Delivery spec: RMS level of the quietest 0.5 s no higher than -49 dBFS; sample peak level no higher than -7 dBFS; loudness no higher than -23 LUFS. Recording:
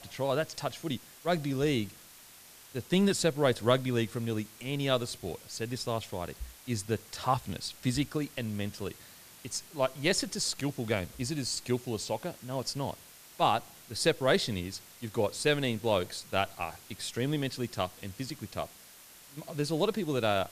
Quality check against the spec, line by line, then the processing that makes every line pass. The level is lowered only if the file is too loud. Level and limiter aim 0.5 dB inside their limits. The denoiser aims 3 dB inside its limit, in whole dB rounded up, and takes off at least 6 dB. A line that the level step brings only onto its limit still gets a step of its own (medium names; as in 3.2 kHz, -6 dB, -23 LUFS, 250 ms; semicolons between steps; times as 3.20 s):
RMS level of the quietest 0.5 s -54 dBFS: pass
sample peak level -11.0 dBFS: pass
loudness -32.0 LUFS: pass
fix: none needed